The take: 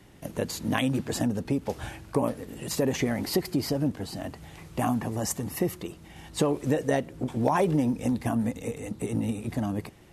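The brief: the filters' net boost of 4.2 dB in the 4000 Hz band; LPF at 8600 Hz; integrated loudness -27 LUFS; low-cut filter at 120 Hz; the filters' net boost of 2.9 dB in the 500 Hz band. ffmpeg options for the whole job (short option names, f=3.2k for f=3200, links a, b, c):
-af "highpass=120,lowpass=8.6k,equalizer=f=500:t=o:g=3.5,equalizer=f=4k:t=o:g=5.5,volume=1dB"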